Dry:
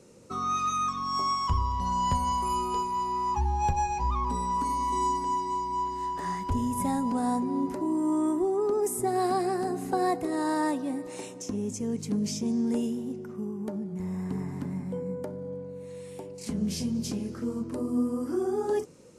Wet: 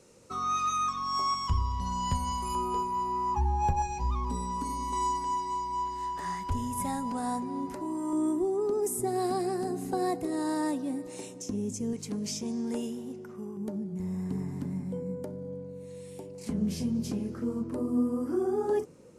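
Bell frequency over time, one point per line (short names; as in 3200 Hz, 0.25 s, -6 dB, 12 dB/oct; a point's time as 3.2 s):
bell -6.5 dB 2.5 oct
210 Hz
from 1.34 s 670 Hz
from 2.55 s 4300 Hz
from 3.82 s 1200 Hz
from 4.93 s 300 Hz
from 8.13 s 1300 Hz
from 11.93 s 170 Hz
from 13.57 s 1300 Hz
from 16.35 s 5700 Hz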